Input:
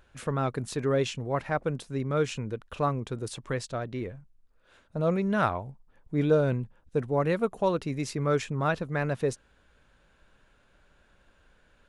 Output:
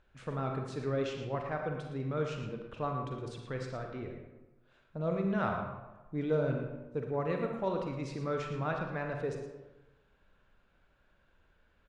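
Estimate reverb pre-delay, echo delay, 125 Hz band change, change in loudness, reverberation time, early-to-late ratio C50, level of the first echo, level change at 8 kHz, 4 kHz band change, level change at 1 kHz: 36 ms, 0.114 s, -6.5 dB, -6.5 dB, 1.1 s, 3.0 dB, -9.0 dB, under -10 dB, -9.0 dB, -6.0 dB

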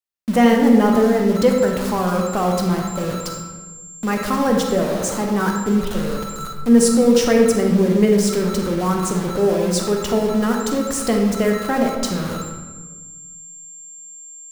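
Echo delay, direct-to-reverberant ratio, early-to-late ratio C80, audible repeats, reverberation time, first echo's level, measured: none, 1.0 dB, 5.0 dB, none, 1.4 s, none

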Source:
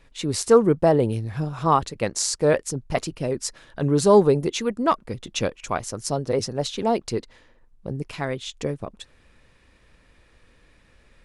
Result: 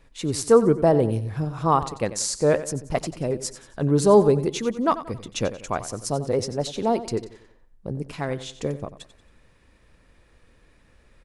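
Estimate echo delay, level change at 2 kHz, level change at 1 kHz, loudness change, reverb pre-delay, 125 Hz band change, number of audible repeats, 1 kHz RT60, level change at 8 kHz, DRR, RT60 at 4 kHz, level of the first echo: 91 ms, -3.0 dB, -1.0 dB, -0.5 dB, none, +0.5 dB, 3, none, -1.5 dB, none, none, -14.0 dB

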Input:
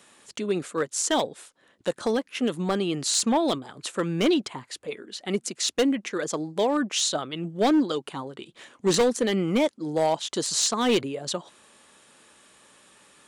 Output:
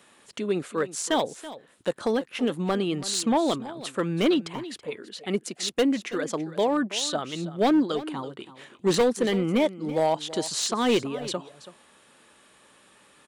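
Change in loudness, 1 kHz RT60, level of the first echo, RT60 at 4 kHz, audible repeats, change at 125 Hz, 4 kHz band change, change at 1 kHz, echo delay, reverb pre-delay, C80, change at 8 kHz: -1.0 dB, none, -15.5 dB, none, 1, 0.0 dB, -2.0 dB, 0.0 dB, 0.329 s, none, none, -5.0 dB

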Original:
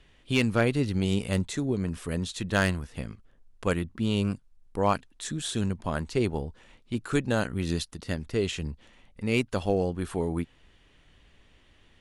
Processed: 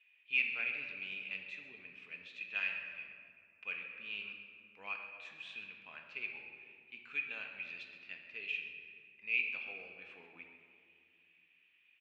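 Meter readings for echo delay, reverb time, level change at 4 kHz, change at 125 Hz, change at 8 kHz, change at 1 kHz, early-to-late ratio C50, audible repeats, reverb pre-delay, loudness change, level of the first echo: 0.133 s, 2.4 s, -11.5 dB, under -40 dB, under -35 dB, -22.0 dB, 4.0 dB, 1, 4 ms, -10.5 dB, -13.5 dB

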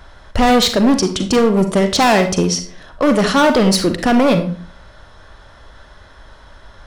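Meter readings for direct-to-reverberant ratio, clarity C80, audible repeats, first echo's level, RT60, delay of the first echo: 7.0 dB, 14.5 dB, none, none, 0.45 s, none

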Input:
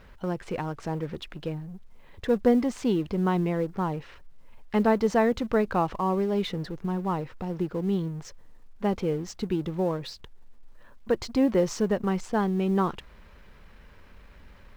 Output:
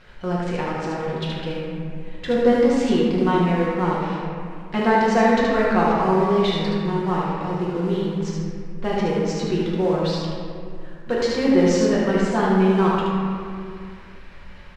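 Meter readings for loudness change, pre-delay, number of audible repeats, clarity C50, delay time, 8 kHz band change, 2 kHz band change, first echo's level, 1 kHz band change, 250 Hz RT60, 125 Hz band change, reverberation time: +6.5 dB, 6 ms, 1, -2.5 dB, 74 ms, +6.5 dB, +10.5 dB, -4.0 dB, +8.5 dB, 2.6 s, +6.5 dB, 2.3 s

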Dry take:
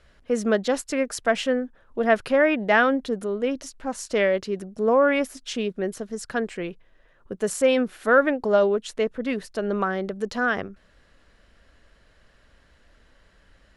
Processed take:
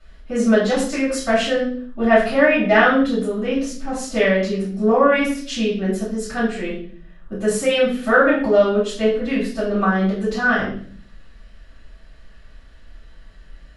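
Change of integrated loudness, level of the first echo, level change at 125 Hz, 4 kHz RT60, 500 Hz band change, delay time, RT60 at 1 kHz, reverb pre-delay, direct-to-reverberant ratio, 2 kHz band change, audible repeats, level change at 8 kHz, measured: +5.0 dB, none, +10.0 dB, 0.55 s, +4.0 dB, none, 0.40 s, 3 ms, -11.5 dB, +5.5 dB, none, +3.5 dB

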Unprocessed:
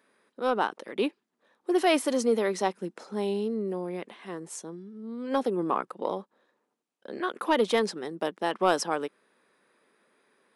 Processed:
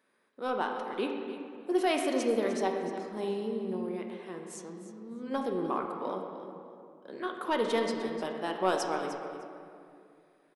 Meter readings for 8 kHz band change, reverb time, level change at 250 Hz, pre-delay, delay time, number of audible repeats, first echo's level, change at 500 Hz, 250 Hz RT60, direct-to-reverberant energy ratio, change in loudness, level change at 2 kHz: -5.5 dB, 2.4 s, -3.0 dB, 5 ms, 0.303 s, 1, -13.5 dB, -3.5 dB, 3.0 s, 2.0 dB, -4.0 dB, -4.0 dB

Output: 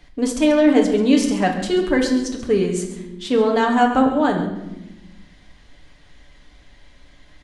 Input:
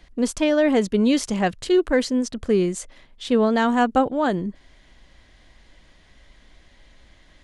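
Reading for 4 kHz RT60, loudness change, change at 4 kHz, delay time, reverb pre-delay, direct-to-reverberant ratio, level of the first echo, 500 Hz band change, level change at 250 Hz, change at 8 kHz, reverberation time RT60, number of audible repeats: 0.70 s, +3.0 dB, +2.5 dB, 0.136 s, 7 ms, 0.5 dB, -13.5 dB, +2.5 dB, +3.5 dB, +2.0 dB, 1.0 s, 1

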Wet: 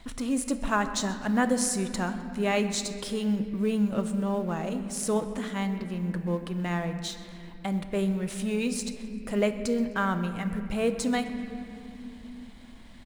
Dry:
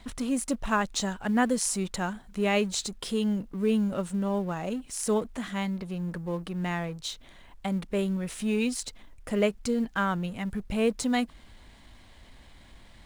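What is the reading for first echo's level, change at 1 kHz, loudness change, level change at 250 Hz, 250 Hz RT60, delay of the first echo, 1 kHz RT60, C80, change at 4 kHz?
-20.0 dB, +0.5 dB, +0.5 dB, +0.5 dB, 5.3 s, 0.129 s, 2.5 s, 10.0 dB, -1.0 dB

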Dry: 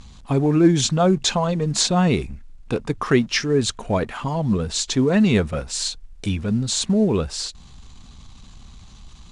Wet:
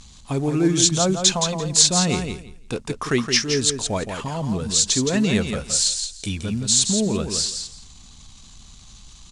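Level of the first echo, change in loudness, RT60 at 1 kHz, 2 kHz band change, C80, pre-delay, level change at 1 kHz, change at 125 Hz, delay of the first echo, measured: -7.0 dB, +0.5 dB, none, -0.5 dB, none, none, -3.0 dB, -3.5 dB, 0.169 s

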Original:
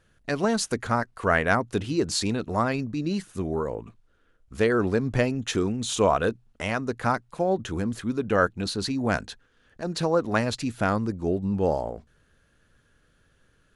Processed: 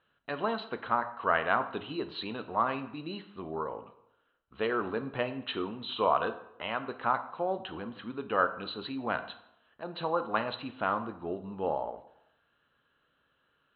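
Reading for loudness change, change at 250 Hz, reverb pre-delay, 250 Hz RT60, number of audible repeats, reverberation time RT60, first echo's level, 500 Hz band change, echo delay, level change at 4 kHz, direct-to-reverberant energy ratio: -6.5 dB, -11.5 dB, 9 ms, 0.75 s, none, 0.75 s, none, -7.5 dB, none, -6.5 dB, 9.0 dB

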